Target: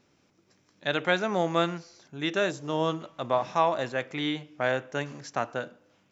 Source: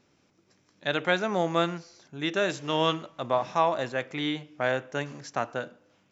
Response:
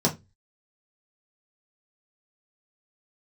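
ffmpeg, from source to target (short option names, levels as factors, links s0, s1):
-filter_complex "[0:a]asplit=3[s0][s1][s2];[s0]afade=t=out:st=2.48:d=0.02[s3];[s1]equalizer=f=2500:t=o:w=1.8:g=-11,afade=t=in:st=2.48:d=0.02,afade=t=out:st=3:d=0.02[s4];[s2]afade=t=in:st=3:d=0.02[s5];[s3][s4][s5]amix=inputs=3:normalize=0"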